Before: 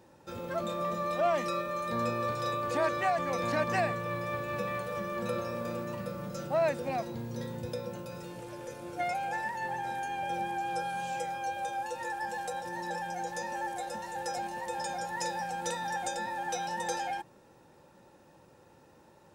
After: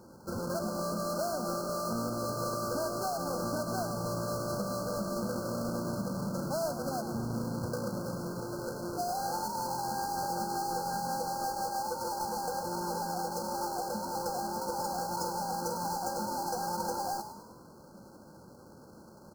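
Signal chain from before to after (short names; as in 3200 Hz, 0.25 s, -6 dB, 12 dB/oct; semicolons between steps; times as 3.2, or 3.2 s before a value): half-waves squared off; bell 210 Hz +8 dB 0.29 oct; compressor, threshold -32 dBFS, peak gain reduction 11 dB; on a send: frequency-shifting echo 0.102 s, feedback 51%, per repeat +51 Hz, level -10.5 dB; on the sum: FFT band-reject 1600–4100 Hz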